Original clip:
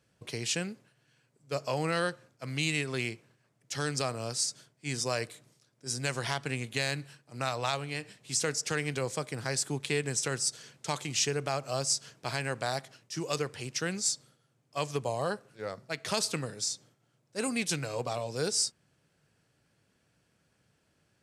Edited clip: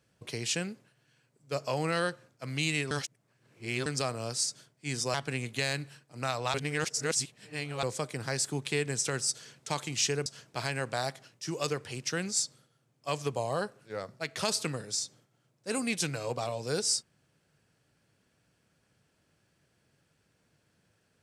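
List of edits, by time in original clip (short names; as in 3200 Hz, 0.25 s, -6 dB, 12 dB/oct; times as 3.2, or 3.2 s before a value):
2.91–3.86 reverse
5.14–6.32 cut
7.72–9.01 reverse
11.44–11.95 cut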